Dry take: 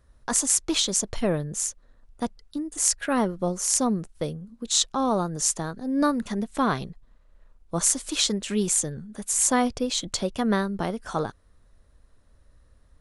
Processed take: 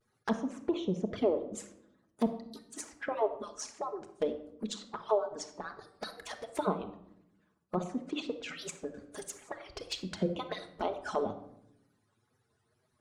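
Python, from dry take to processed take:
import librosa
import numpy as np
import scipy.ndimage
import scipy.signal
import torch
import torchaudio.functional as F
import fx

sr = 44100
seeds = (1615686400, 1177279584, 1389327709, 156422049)

y = fx.hpss_only(x, sr, part='percussive')
y = fx.env_lowpass_down(y, sr, base_hz=1000.0, full_db=-23.5)
y = fx.highpass(y, sr, hz=170.0, slope=6)
y = fx.env_flanger(y, sr, rest_ms=8.7, full_db=-30.5)
y = fx.wow_flutter(y, sr, seeds[0], rate_hz=2.1, depth_cents=120.0)
y = fx.room_shoebox(y, sr, seeds[1], volume_m3=2000.0, walls='furnished', distance_m=1.4)
y = fx.band_squash(y, sr, depth_pct=40, at=(8.94, 9.44))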